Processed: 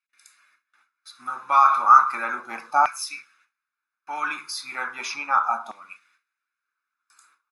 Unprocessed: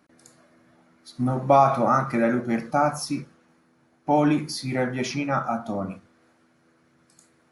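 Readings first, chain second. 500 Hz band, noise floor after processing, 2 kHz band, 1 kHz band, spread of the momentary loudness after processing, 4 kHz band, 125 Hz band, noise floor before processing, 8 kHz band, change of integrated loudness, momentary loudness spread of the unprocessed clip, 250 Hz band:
-15.0 dB, under -85 dBFS, +4.5 dB, +4.5 dB, 19 LU, +0.5 dB, under -30 dB, -63 dBFS, +1.0 dB, +2.5 dB, 13 LU, -23.0 dB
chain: gate with hold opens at -48 dBFS; comb 0.8 ms, depth 62%; LFO high-pass saw down 0.35 Hz 820–2200 Hz; trim -1 dB

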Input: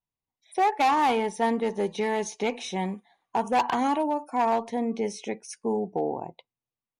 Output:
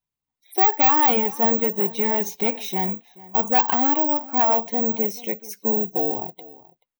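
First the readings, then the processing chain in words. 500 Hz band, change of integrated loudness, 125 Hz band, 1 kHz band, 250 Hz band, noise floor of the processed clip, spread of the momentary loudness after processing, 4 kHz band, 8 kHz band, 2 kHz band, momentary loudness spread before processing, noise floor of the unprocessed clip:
+2.0 dB, +7.5 dB, no reading, +2.0 dB, +2.5 dB, under -85 dBFS, 11 LU, +2.0 dB, +2.0 dB, +2.0 dB, 11 LU, under -85 dBFS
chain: coarse spectral quantiser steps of 15 dB; echo from a far wall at 74 m, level -20 dB; careless resampling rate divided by 2×, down filtered, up zero stuff; trim +2.5 dB

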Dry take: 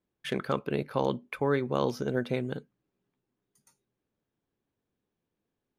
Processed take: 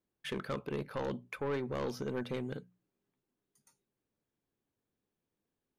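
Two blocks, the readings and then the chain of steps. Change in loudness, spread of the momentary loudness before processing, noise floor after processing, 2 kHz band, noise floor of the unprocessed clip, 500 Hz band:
-7.5 dB, 7 LU, under -85 dBFS, -6.5 dB, under -85 dBFS, -7.5 dB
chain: hum notches 60/120/180 Hz; saturation -26 dBFS, distortion -8 dB; trim -3.5 dB

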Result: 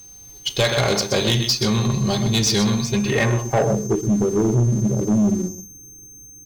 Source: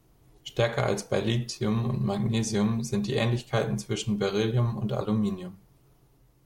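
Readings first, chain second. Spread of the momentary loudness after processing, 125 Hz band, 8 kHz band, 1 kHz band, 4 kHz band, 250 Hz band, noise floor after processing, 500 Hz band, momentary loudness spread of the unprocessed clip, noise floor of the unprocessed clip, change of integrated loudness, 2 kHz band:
5 LU, +7.0 dB, +14.0 dB, +7.5 dB, +13.5 dB, +8.0 dB, -43 dBFS, +7.0 dB, 5 LU, -62 dBFS, +8.5 dB, +9.5 dB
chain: treble shelf 2.7 kHz +8.5 dB; on a send: delay 126 ms -10 dB; on the sum: low-pass sweep 4.7 kHz -> 310 Hz, 2.75–4.04 s; whistle 6.3 kHz -42 dBFS; waveshaping leveller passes 3; trim -3.5 dB

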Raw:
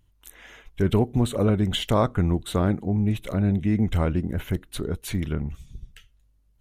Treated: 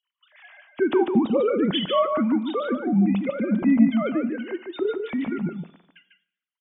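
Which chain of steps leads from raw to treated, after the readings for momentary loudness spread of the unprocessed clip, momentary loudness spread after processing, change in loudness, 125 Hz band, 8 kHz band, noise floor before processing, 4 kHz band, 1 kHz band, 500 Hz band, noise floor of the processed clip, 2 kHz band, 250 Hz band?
9 LU, 10 LU, +1.5 dB, -10.0 dB, under -40 dB, -63 dBFS, +1.0 dB, +3.0 dB, +4.0 dB, under -85 dBFS, +3.0 dB, +4.0 dB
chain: formants replaced by sine waves; on a send: delay 147 ms -5.5 dB; on the sum: plate-style reverb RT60 0.76 s, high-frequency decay 0.85×, DRR 14.5 dB

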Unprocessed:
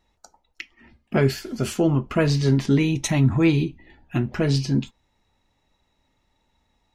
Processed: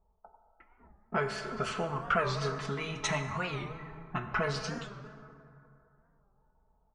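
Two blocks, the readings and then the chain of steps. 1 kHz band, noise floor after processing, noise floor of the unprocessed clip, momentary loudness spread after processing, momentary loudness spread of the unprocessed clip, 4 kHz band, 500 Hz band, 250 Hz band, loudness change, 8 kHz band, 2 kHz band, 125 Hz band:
+1.5 dB, -71 dBFS, -71 dBFS, 14 LU, 18 LU, -7.5 dB, -10.0 dB, -19.0 dB, -12.0 dB, -9.5 dB, -3.0 dB, -16.5 dB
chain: level-controlled noise filter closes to 660 Hz, open at -18 dBFS; compression 6:1, threshold -27 dBFS, peak gain reduction 13 dB; peaking EQ 1.2 kHz +14 dB 1.1 oct; level-controlled noise filter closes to 720 Hz, open at -27 dBFS; peaking EQ 260 Hz -14 dB 0.72 oct; comb 4.6 ms, depth 58%; resampled via 22.05 kHz; plate-style reverb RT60 2.7 s, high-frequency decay 0.4×, pre-delay 0 ms, DRR 6 dB; warped record 45 rpm, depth 160 cents; trim -3 dB

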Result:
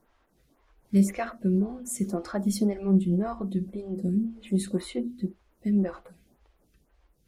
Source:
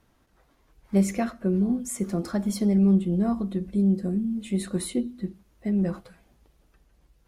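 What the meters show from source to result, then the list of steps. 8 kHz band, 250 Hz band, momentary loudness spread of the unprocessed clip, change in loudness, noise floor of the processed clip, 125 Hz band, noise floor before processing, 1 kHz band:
-1.5 dB, -2.5 dB, 9 LU, -2.0 dB, -68 dBFS, -2.0 dB, -65 dBFS, 0.0 dB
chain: lamp-driven phase shifter 1.9 Hz; trim +1.5 dB

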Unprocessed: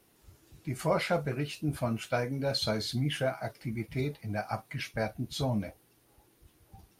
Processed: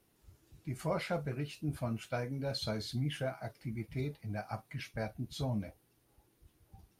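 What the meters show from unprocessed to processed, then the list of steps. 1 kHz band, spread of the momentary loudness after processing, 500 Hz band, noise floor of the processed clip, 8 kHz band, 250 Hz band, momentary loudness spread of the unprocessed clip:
-7.0 dB, 7 LU, -7.0 dB, -72 dBFS, -7.5 dB, -5.0 dB, 7 LU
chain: bass shelf 200 Hz +5.5 dB; trim -7.5 dB

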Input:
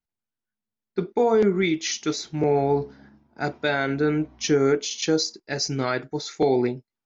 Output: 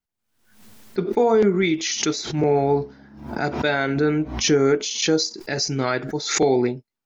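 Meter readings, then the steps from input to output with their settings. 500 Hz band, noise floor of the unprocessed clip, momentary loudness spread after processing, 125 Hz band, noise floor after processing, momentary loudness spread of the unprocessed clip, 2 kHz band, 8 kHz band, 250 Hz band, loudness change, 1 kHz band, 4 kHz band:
+2.0 dB, under -85 dBFS, 9 LU, +3.0 dB, -84 dBFS, 9 LU, +3.0 dB, no reading, +2.5 dB, +2.5 dB, +2.5 dB, +4.0 dB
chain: swell ahead of each attack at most 78 dB/s; trim +2 dB

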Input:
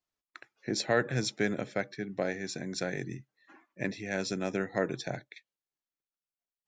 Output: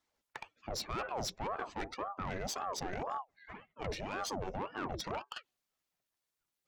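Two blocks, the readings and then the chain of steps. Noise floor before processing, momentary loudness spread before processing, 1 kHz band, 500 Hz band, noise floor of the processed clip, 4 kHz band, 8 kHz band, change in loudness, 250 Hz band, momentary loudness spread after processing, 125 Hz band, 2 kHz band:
under -85 dBFS, 12 LU, +3.0 dB, -8.5 dB, under -85 dBFS, -4.0 dB, -3.5 dB, -6.5 dB, -10.5 dB, 12 LU, -8.5 dB, -9.0 dB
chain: spectral contrast enhancement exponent 1.5; reverse; compression 6:1, threshold -40 dBFS, peak gain reduction 16.5 dB; reverse; valve stage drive 43 dB, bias 0.45; ring modulator with a swept carrier 590 Hz, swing 70%, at 1.9 Hz; trim +12.5 dB

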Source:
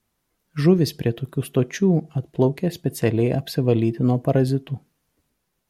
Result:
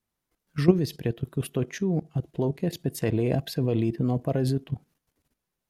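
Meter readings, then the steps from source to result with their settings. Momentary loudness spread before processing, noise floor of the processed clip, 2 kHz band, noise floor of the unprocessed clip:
8 LU, -84 dBFS, -5.5 dB, -75 dBFS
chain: level held to a coarse grid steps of 12 dB

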